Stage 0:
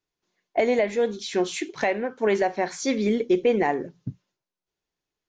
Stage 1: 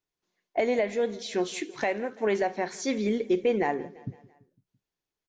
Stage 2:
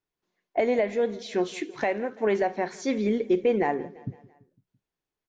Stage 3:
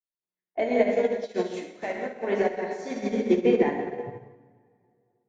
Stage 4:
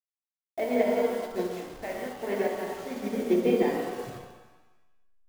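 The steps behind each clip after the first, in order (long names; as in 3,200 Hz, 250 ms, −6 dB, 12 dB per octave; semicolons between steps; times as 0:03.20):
repeating echo 168 ms, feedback 56%, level −21 dB; level −4 dB
high-shelf EQ 3,800 Hz −9 dB; level +2 dB
dense smooth reverb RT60 2.6 s, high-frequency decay 0.7×, DRR −3.5 dB; expander for the loud parts 2.5 to 1, over −32 dBFS; level +1 dB
hold until the input has moved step −38 dBFS; reverb with rising layers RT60 1 s, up +7 semitones, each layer −8 dB, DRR 5 dB; level −4 dB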